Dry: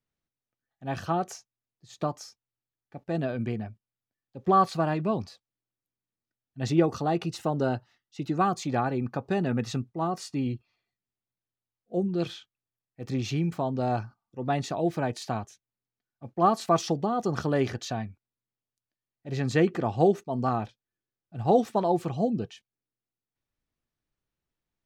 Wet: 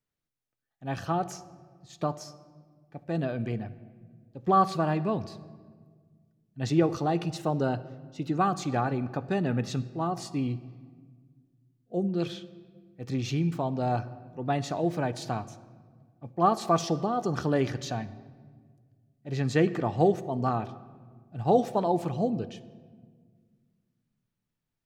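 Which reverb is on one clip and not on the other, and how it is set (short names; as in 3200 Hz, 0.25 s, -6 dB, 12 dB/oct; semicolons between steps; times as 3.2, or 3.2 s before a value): shoebox room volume 2100 m³, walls mixed, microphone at 0.41 m; gain -1 dB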